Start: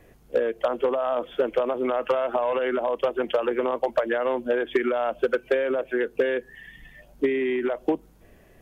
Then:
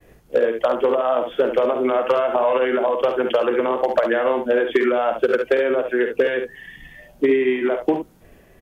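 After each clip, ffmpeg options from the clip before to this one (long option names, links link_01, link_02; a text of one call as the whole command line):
ffmpeg -i in.wav -af "agate=range=-33dB:threshold=-51dB:ratio=3:detection=peak,aecho=1:1:52|70:0.335|0.422,volume=4.5dB" out.wav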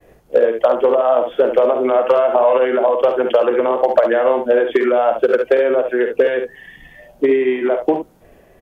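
ffmpeg -i in.wav -af "equalizer=frequency=630:width=0.9:gain=7,volume=-1dB" out.wav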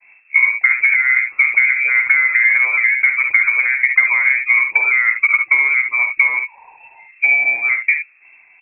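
ffmpeg -i in.wav -af "lowpass=frequency=2300:width_type=q:width=0.5098,lowpass=frequency=2300:width_type=q:width=0.6013,lowpass=frequency=2300:width_type=q:width=0.9,lowpass=frequency=2300:width_type=q:width=2.563,afreqshift=-2700,highshelf=frequency=2100:gain=10.5,volume=-5.5dB" out.wav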